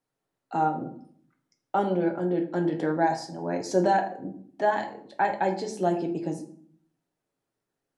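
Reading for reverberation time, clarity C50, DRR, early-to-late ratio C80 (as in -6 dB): 0.55 s, 11.0 dB, 2.0 dB, 14.5 dB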